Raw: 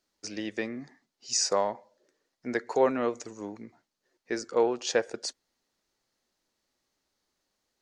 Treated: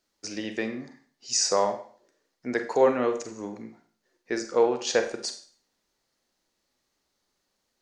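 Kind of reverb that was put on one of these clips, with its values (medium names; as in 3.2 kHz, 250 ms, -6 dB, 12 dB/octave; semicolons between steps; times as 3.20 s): Schroeder reverb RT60 0.46 s, combs from 32 ms, DRR 7 dB; trim +2 dB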